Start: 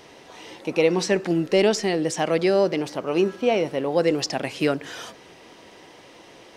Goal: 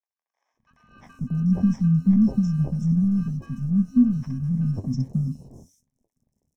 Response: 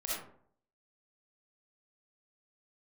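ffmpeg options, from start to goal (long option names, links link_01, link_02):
-filter_complex "[0:a]equalizer=frequency=2600:width=0.88:gain=5,aeval=exprs='sgn(val(0))*max(abs(val(0))-0.0133,0)':channel_layout=same,afftfilt=real='re*(1-between(b*sr/4096,260,5200))':imag='im*(1-between(b*sr/4096,260,5200))':win_size=4096:overlap=0.75,asplit=2[link_01][link_02];[link_02]acrusher=samples=32:mix=1:aa=0.000001,volume=-9.5dB[link_03];[link_01][link_03]amix=inputs=2:normalize=0,acrossover=split=4600[link_04][link_05];[link_05]acompressor=threshold=-54dB:ratio=4:attack=1:release=60[link_06];[link_04][link_06]amix=inputs=2:normalize=0,flanger=delay=7.4:depth=7.1:regen=62:speed=1.1:shape=sinusoidal,tiltshelf=frequency=1400:gain=10,acrossover=split=1000|3800[link_07][link_08][link_09];[link_07]adelay=540[link_10];[link_09]adelay=700[link_11];[link_10][link_08][link_11]amix=inputs=3:normalize=0,volume=5dB"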